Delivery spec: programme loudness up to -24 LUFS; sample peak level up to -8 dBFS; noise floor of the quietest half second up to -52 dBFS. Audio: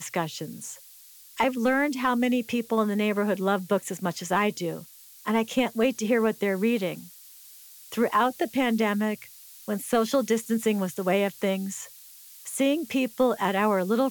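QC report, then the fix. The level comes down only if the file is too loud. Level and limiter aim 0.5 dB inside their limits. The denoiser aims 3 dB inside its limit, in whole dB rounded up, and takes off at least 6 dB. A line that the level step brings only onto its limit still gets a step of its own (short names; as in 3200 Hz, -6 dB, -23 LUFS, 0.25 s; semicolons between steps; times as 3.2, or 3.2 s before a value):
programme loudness -26.0 LUFS: OK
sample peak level -12.5 dBFS: OK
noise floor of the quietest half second -50 dBFS: fail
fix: denoiser 6 dB, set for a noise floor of -50 dBFS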